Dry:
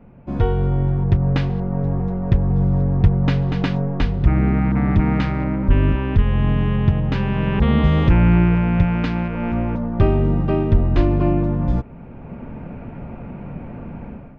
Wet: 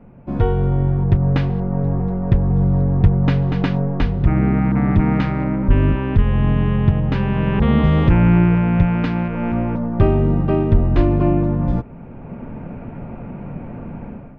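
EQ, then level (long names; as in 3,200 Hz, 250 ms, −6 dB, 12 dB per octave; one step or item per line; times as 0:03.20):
parametric band 60 Hz −7 dB 0.44 octaves
high-shelf EQ 3,400 Hz −7.5 dB
+2.0 dB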